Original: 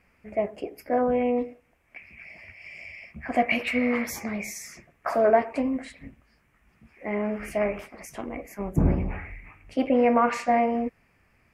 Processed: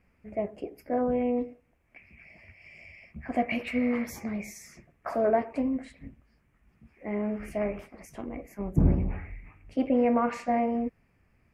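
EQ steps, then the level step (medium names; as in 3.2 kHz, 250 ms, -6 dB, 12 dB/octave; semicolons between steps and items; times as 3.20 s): bass shelf 490 Hz +9 dB; -8.5 dB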